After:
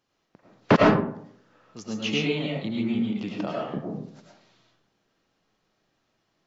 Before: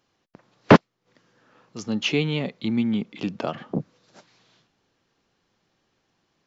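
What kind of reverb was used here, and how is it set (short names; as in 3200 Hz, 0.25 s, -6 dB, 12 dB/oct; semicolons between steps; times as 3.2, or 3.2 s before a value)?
digital reverb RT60 0.66 s, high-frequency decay 0.45×, pre-delay 65 ms, DRR -3 dB; gain -6 dB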